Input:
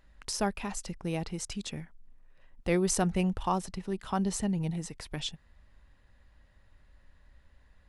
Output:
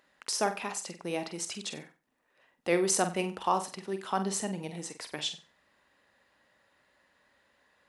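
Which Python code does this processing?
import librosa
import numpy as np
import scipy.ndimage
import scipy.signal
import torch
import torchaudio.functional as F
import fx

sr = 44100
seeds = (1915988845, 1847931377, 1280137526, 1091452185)

y = scipy.signal.sosfilt(scipy.signal.butter(2, 330.0, 'highpass', fs=sr, output='sos'), x)
y = fx.room_flutter(y, sr, wall_m=8.0, rt60_s=0.31)
y = F.gain(torch.from_numpy(y), 2.5).numpy()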